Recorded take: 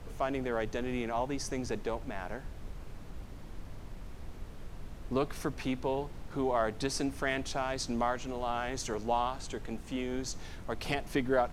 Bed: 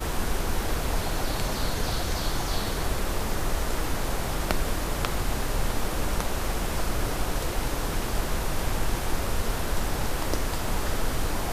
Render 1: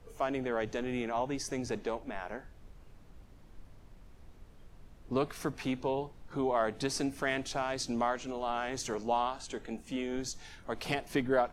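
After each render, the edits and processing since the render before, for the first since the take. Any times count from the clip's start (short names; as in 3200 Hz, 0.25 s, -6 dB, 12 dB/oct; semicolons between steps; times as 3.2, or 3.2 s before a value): noise print and reduce 10 dB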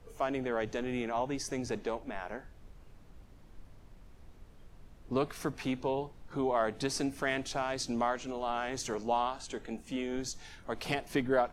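nothing audible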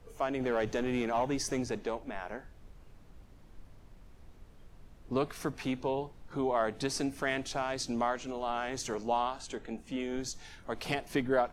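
0.4–1.64 sample leveller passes 1; 9.55–10 high shelf 5300 Hz -6.5 dB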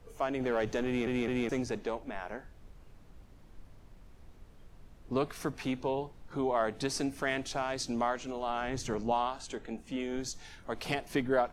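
0.86 stutter in place 0.21 s, 3 plays; 8.61–9.12 tone controls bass +8 dB, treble -4 dB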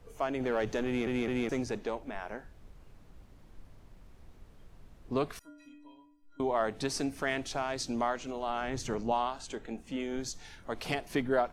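5.39–6.4 metallic resonator 290 Hz, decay 0.84 s, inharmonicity 0.03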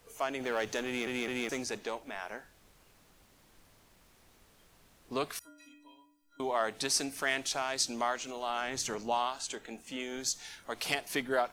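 tilt +3 dB/oct; notches 60/120 Hz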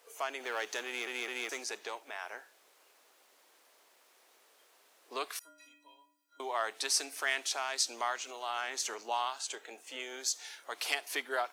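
HPF 400 Hz 24 dB/oct; dynamic EQ 540 Hz, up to -7 dB, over -49 dBFS, Q 1.7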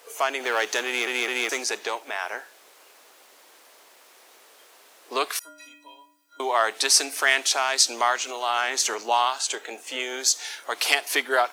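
gain +12 dB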